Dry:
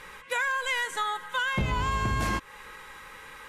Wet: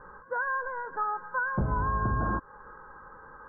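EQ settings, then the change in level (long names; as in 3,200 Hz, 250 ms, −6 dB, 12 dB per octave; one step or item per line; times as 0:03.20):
Butterworth low-pass 1,600 Hz 96 dB per octave
0.0 dB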